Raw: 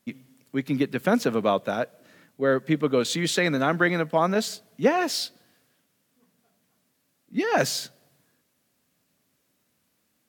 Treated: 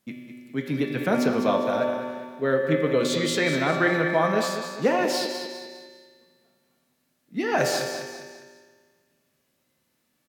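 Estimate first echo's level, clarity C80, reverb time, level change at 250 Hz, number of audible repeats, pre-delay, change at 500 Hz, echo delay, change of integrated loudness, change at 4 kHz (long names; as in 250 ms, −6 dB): −9.5 dB, 3.0 dB, 1.9 s, 0.0 dB, 3, 3 ms, +1.5 dB, 202 ms, 0.0 dB, −0.5 dB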